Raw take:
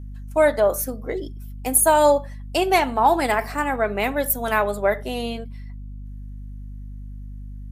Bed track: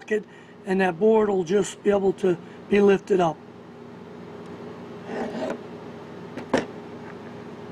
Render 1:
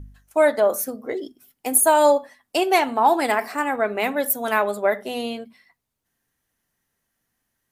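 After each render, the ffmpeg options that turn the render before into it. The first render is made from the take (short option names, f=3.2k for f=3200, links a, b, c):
-af "bandreject=f=50:t=h:w=4,bandreject=f=100:t=h:w=4,bandreject=f=150:t=h:w=4,bandreject=f=200:t=h:w=4,bandreject=f=250:t=h:w=4"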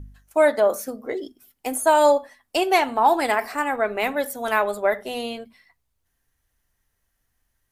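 -filter_complex "[0:a]acrossover=split=7600[a][b];[b]acompressor=threshold=-35dB:ratio=4:attack=1:release=60[c];[a][c]amix=inputs=2:normalize=0,asubboost=boost=7:cutoff=71"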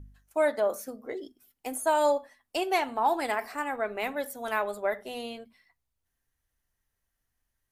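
-af "volume=-8dB"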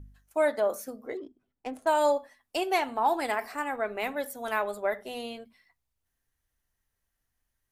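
-filter_complex "[0:a]asettb=1/sr,asplit=3[a][b][c];[a]atrim=end=1.174[d];[b]atrim=start=1.17:end=1.87,asetpts=PTS-STARTPTS,afade=t=in:d=0.004:c=qsin,afade=t=out:st=0.696:d=0.004:c=qsin,adynamicsmooth=sensitivity=7:basefreq=1.2k[e];[c]atrim=start=1.866[f];[d][e]acrossfade=d=0.004:c1=hsin:c2=qsin[g];[g][f]acrossfade=d=0.004:c1=qsin:c2=hsin"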